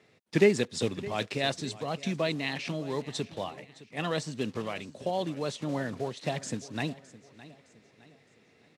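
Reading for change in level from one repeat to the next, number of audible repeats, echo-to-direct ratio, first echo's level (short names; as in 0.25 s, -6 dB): -8.0 dB, 3, -17.5 dB, -18.0 dB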